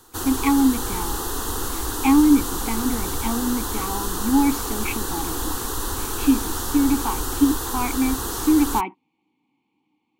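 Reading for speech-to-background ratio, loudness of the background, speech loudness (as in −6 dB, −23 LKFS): 4.5 dB, −27.0 LKFS, −22.5 LKFS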